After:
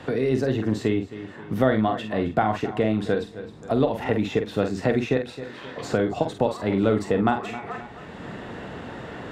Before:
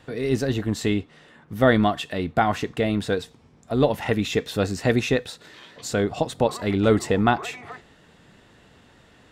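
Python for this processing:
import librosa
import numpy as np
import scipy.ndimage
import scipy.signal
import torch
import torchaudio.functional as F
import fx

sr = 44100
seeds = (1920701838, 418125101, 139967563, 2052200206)

y = fx.highpass(x, sr, hz=680.0, slope=6)
y = fx.tilt_eq(y, sr, slope=-4.0)
y = fx.doubler(y, sr, ms=46.0, db=-7.0)
y = fx.echo_feedback(y, sr, ms=264, feedback_pct=24, wet_db=-18)
y = fx.band_squash(y, sr, depth_pct=70)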